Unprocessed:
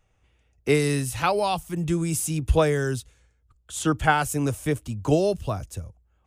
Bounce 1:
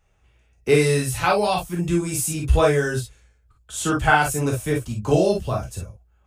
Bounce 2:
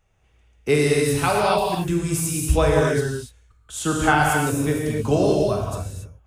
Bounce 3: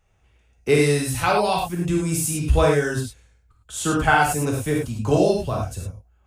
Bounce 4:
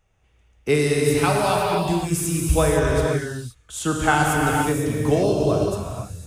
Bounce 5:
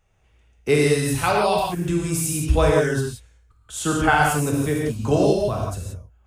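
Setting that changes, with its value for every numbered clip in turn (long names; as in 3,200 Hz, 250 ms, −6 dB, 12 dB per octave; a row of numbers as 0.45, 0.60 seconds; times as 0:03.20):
reverb whose tail is shaped and stops, gate: 80, 310, 130, 540, 200 milliseconds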